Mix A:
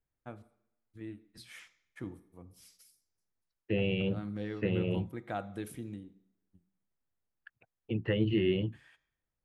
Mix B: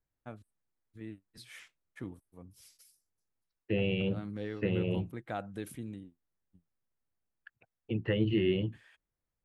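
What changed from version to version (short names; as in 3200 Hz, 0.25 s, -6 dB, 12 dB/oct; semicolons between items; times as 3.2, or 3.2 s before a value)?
reverb: off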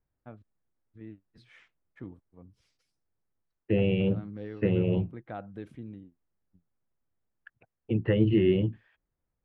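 second voice +6.5 dB; master: add tape spacing loss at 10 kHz 27 dB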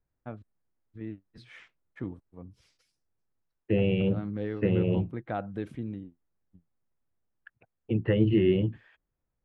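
first voice +6.5 dB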